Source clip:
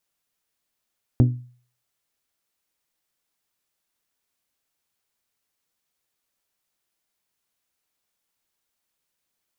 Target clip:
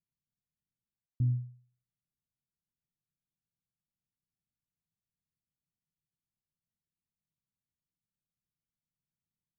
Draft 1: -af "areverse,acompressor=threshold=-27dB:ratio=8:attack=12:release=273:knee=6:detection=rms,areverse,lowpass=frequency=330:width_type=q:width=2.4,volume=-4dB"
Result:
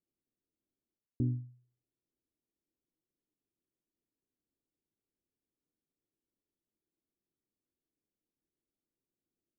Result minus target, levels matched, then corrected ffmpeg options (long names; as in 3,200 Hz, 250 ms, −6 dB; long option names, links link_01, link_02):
250 Hz band +8.5 dB
-af "areverse,acompressor=threshold=-27dB:ratio=8:attack=12:release=273:knee=6:detection=rms,areverse,lowpass=frequency=160:width_type=q:width=2.4,volume=-4dB"